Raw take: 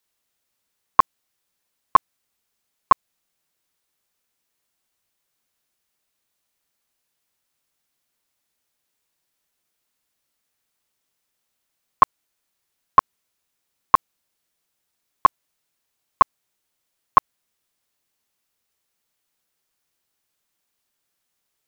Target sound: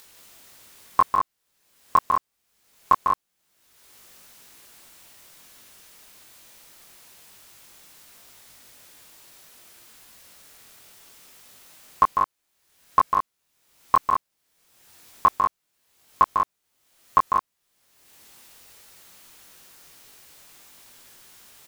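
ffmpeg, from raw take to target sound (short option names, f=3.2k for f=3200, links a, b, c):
-af "acompressor=mode=upward:threshold=-27dB:ratio=2.5,flanger=delay=19.5:depth=4:speed=0.25,aecho=1:1:148.7|189.5:0.501|0.562"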